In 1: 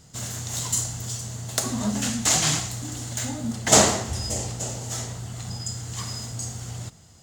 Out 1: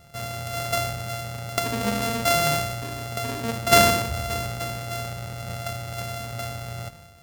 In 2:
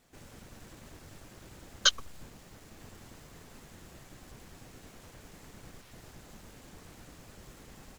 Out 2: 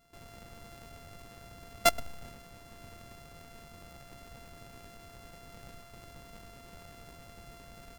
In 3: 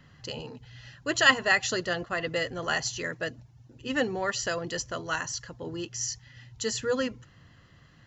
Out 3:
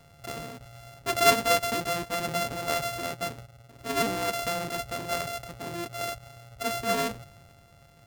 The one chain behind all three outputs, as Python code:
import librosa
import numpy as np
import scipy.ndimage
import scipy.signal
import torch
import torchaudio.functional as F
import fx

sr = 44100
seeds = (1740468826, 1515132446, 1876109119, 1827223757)

y = np.r_[np.sort(x[:len(x) // 64 * 64].reshape(-1, 64), axis=1).ravel(), x[len(x) // 64 * 64:]]
y = fx.transient(y, sr, attack_db=0, sustain_db=5)